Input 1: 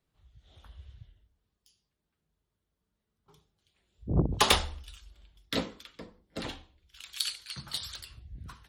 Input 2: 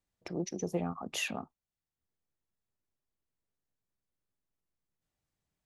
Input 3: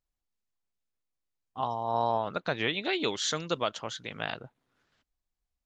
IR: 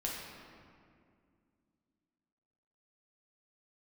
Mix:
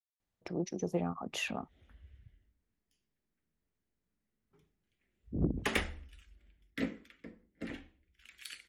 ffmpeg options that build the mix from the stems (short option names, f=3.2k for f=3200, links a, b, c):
-filter_complex "[0:a]equalizer=f=125:t=o:w=1:g=-3,equalizer=f=250:t=o:w=1:g=8,equalizer=f=1k:t=o:w=1:g=-11,equalizer=f=2k:t=o:w=1:g=11,equalizer=f=4k:t=o:w=1:g=-11,adelay=1250,volume=-7dB[a];[1:a]adelay=200,volume=0dB[b];[a][b]amix=inputs=2:normalize=0,highshelf=f=5.2k:g=-8"